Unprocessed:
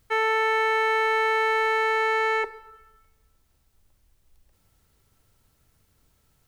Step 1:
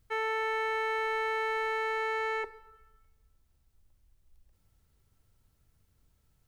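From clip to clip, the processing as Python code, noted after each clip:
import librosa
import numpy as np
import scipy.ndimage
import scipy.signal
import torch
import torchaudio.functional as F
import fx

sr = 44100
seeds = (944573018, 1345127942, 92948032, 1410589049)

y = fx.low_shelf(x, sr, hz=170.0, db=8.0)
y = y * librosa.db_to_amplitude(-9.0)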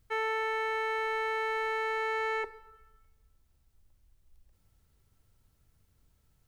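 y = fx.rider(x, sr, range_db=10, speed_s=0.5)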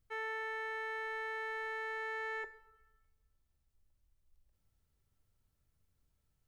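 y = fx.comb_fb(x, sr, f0_hz=590.0, decay_s=0.34, harmonics='all', damping=0.0, mix_pct=60)
y = y * librosa.db_to_amplitude(-2.5)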